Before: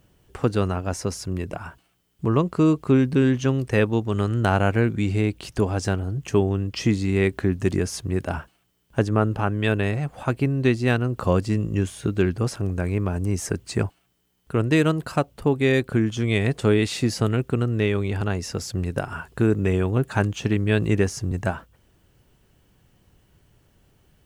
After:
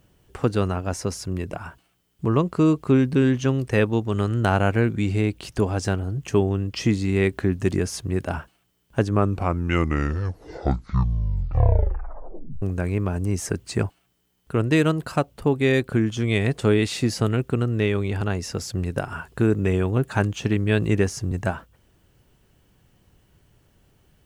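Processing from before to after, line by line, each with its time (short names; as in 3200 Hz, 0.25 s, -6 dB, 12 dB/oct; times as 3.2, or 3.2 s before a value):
8.99 tape stop 3.63 s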